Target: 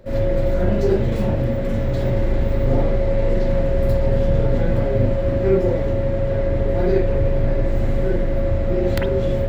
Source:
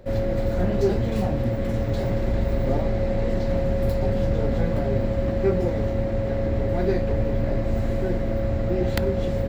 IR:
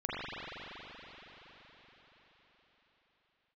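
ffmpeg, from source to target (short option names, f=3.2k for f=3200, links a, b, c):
-filter_complex "[0:a]bandreject=f=750:w=12[a];[1:a]atrim=start_sample=2205,atrim=end_sample=3528[b];[a][b]afir=irnorm=-1:irlink=0,volume=2dB"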